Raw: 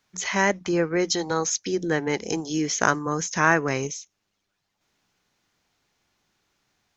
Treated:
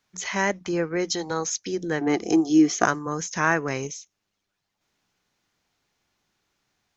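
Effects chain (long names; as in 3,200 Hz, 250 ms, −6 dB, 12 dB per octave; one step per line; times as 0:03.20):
0:02.01–0:02.85: hollow resonant body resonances 330/710/1,200 Hz, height 14 dB
level −2.5 dB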